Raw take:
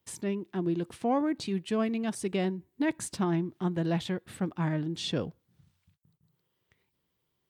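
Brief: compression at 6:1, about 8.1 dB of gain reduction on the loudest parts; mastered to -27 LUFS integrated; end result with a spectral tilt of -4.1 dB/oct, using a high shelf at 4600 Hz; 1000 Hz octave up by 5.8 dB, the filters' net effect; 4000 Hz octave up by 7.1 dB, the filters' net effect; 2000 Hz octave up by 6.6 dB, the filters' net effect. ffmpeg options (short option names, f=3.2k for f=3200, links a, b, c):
-af "equalizer=f=1k:t=o:g=6.5,equalizer=f=2k:t=o:g=4,equalizer=f=4k:t=o:g=3.5,highshelf=f=4.6k:g=7.5,acompressor=threshold=-30dB:ratio=6,volume=7.5dB"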